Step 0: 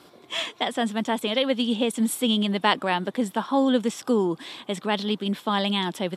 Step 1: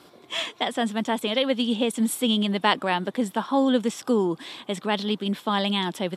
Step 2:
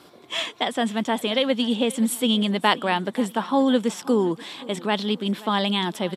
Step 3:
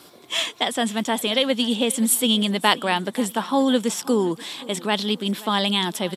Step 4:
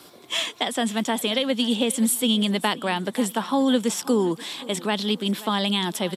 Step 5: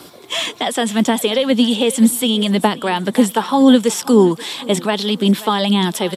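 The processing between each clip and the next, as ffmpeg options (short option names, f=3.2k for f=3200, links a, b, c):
-af anull
-af "aecho=1:1:528|1056|1584:0.1|0.043|0.0185,volume=1.5dB"
-af "highshelf=f=4.7k:g=11.5"
-filter_complex "[0:a]acrossover=split=330[a][b];[b]acompressor=threshold=-21dB:ratio=4[c];[a][c]amix=inputs=2:normalize=0"
-filter_complex "[0:a]acrossover=split=1100[a][b];[a]aphaser=in_gain=1:out_gain=1:delay=2.4:decay=0.44:speed=1.9:type=sinusoidal[c];[b]alimiter=limit=-19.5dB:level=0:latency=1:release=15[d];[c][d]amix=inputs=2:normalize=0,volume=7dB"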